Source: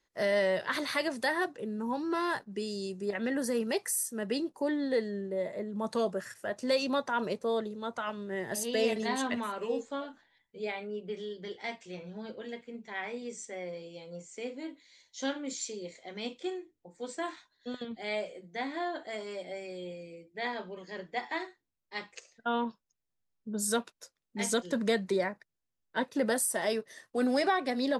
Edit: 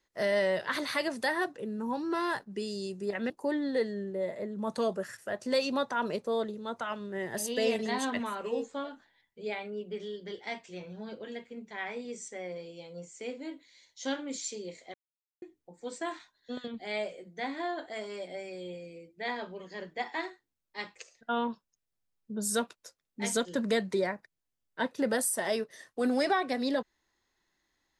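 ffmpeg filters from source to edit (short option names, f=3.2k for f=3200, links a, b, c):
-filter_complex "[0:a]asplit=4[a][b][c][d];[a]atrim=end=3.302[e];[b]atrim=start=4.468:end=16.11,asetpts=PTS-STARTPTS,afade=t=out:st=11.638:d=0.004:c=hsin[f];[c]atrim=start=16.11:end=16.59,asetpts=PTS-STARTPTS,volume=0[g];[d]atrim=start=16.59,asetpts=PTS-STARTPTS,afade=t=in:d=0.004:c=hsin[h];[f][g][h]concat=n=3:v=0:a=1[i];[e][i]acrossfade=d=0.004:c1=hsin:c2=hsin"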